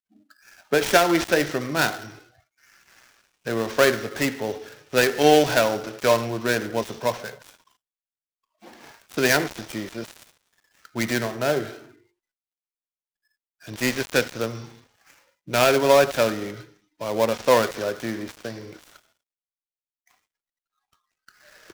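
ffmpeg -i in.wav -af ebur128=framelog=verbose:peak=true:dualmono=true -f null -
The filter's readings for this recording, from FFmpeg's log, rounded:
Integrated loudness:
  I:         -19.3 LUFS
  Threshold: -31.6 LUFS
Loudness range:
  LRA:         8.6 LU
  Threshold: -42.2 LUFS
  LRA low:   -27.6 LUFS
  LRA high:  -18.9 LUFS
True peak:
  Peak:       -2.8 dBFS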